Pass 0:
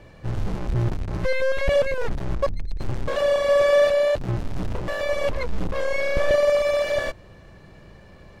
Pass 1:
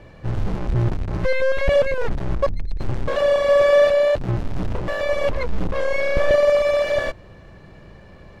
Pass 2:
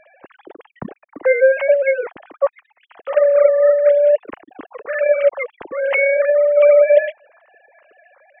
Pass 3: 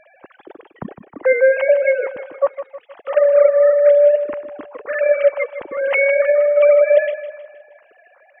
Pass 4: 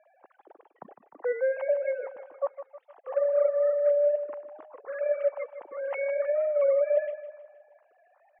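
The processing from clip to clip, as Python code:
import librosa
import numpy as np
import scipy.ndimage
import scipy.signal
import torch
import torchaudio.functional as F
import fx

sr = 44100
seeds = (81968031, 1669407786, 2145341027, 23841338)

y1 = fx.high_shelf(x, sr, hz=5300.0, db=-7.5)
y1 = F.gain(torch.from_numpy(y1), 3.0).numpy()
y2 = fx.sine_speech(y1, sr)
y2 = fx.over_compress(y2, sr, threshold_db=-17.0, ratio=-1.0)
y2 = F.gain(torch.from_numpy(y2), 5.5).numpy()
y3 = fx.echo_feedback(y2, sr, ms=157, feedback_pct=48, wet_db=-12)
y4 = fx.bandpass_q(y3, sr, hz=800.0, q=1.7)
y4 = fx.record_warp(y4, sr, rpm=33.33, depth_cents=100.0)
y4 = F.gain(torch.from_numpy(y4), -8.5).numpy()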